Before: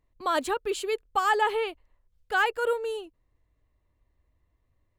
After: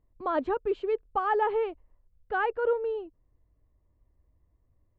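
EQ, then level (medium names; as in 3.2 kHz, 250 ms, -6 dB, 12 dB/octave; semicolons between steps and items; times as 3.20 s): distance through air 91 m; tape spacing loss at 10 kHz 35 dB; tilt shelf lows +3.5 dB, about 1.4 kHz; 0.0 dB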